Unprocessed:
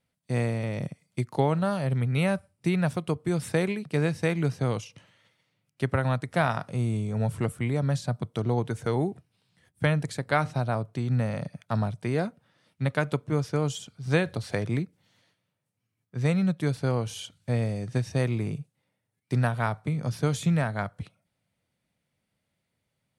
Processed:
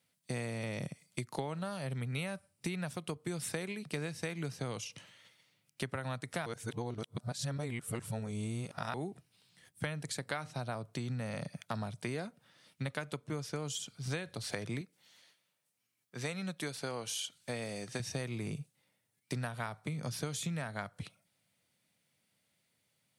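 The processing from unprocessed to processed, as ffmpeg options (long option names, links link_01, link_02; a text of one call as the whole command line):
ffmpeg -i in.wav -filter_complex "[0:a]asettb=1/sr,asplit=3[link_01][link_02][link_03];[link_01]atrim=end=14.814[link_04];[link_02]atrim=start=14.81:end=18,asetpts=PTS-STARTPTS,afade=type=in:duration=0.004:curve=qsin,afade=type=out:start_time=3.186:duration=0.004:curve=qsin,highpass=frequency=380:poles=1[link_05];[link_03]atrim=start=17.996[link_06];[link_04][link_05]acrossfade=duration=0.004:curve1=hsin:curve2=qsin[link_07];[link_07][link_06]acrossfade=duration=0.004:curve1=qsin:curve2=hsin,asplit=3[link_08][link_09][link_10];[link_08]atrim=end=6.462[link_11];[link_09]atrim=start=6.458:end=8.942,asetpts=PTS-STARTPTS,areverse[link_12];[link_10]atrim=start=8.938[link_13];[link_11][link_12]acrossfade=duration=0.004:curve1=hsin:curve2=hsin[link_14];[link_14][link_13]acrossfade=duration=0.004:curve1=hsin:curve2=hsin,highpass=110,highshelf=frequency=2200:gain=10,acompressor=threshold=-33dB:ratio=6,volume=-2dB" out.wav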